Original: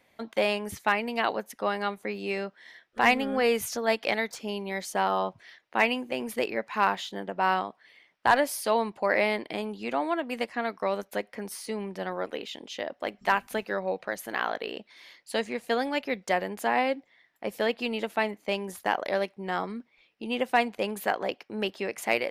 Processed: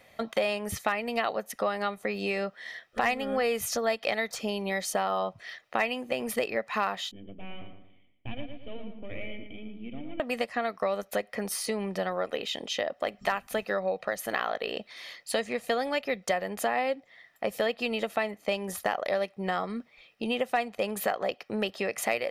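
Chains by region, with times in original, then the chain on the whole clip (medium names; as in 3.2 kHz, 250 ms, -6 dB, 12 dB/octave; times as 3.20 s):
7.11–10.20 s: partial rectifier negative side -12 dB + cascade formant filter i + filtered feedback delay 114 ms, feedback 39%, low-pass 2.9 kHz, level -6 dB
whole clip: comb 1.6 ms, depth 42%; compression 3:1, threshold -35 dBFS; trim +7 dB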